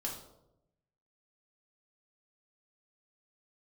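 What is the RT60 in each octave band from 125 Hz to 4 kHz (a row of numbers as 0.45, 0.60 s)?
1.3, 1.0, 1.0, 0.75, 0.50, 0.50 s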